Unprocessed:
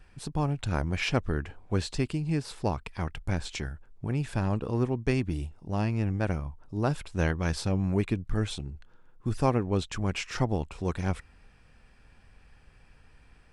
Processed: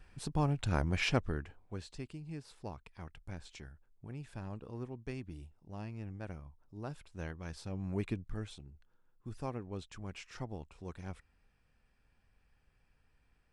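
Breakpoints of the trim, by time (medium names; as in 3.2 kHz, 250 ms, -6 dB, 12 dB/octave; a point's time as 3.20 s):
1.10 s -3 dB
1.78 s -15.5 dB
7.58 s -15.5 dB
8.09 s -7.5 dB
8.54 s -15 dB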